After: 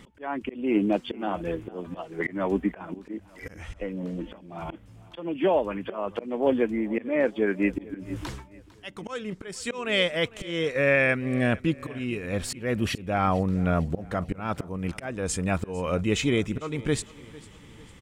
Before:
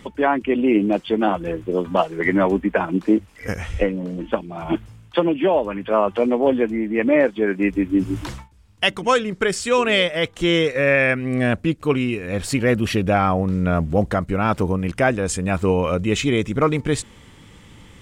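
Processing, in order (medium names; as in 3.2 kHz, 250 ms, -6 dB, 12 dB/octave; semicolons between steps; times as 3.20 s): slow attack 305 ms; on a send: feedback delay 451 ms, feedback 45%, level -20.5 dB; on the sum: trim -4.5 dB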